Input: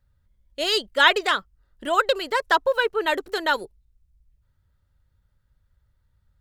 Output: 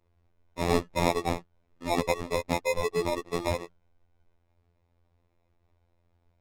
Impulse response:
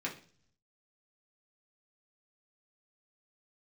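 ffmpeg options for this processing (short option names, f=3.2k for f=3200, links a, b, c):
-filter_complex "[0:a]aemphasis=mode=production:type=50fm,bandreject=f=50:t=h:w=6,bandreject=f=100:t=h:w=6,bandreject=f=150:t=h:w=6,acrossover=split=820|3500[a][b][c];[b]acompressor=threshold=-30dB:ratio=6[d];[a][d][c]amix=inputs=3:normalize=0,acrusher=samples=29:mix=1:aa=0.000001,adynamicsmooth=sensitivity=6:basefreq=5.7k,afftfilt=real='hypot(re,im)*cos(PI*b)':imag='0':win_size=2048:overlap=0.75,adynamicequalizer=threshold=0.0178:dfrequency=1500:dqfactor=0.7:tfrequency=1500:tqfactor=0.7:attack=5:release=100:ratio=0.375:range=2.5:mode=cutabove:tftype=highshelf"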